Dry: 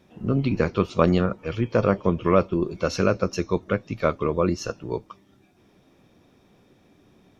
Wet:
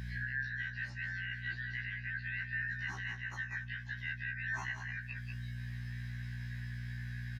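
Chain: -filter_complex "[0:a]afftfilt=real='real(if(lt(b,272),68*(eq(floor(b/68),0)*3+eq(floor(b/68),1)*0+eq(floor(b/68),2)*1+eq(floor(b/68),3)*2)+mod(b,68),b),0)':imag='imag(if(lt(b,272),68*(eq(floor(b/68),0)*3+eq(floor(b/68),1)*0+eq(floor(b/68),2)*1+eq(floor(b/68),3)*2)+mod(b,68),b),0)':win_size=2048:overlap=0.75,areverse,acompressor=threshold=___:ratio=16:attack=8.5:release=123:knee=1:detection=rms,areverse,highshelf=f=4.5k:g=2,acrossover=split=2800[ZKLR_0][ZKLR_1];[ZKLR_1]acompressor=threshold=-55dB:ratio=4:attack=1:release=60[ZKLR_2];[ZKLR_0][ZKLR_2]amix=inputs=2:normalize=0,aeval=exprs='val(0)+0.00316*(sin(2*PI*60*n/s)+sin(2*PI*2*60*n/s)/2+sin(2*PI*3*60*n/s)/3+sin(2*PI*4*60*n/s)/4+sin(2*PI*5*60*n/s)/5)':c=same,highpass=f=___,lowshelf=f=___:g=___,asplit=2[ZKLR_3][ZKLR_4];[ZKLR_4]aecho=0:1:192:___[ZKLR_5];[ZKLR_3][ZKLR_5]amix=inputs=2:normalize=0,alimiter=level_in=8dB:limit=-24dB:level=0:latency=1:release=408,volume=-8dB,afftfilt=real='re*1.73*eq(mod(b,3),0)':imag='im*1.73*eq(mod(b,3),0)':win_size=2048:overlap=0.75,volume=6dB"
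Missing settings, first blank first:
-34dB, 110, 260, 12, 0.398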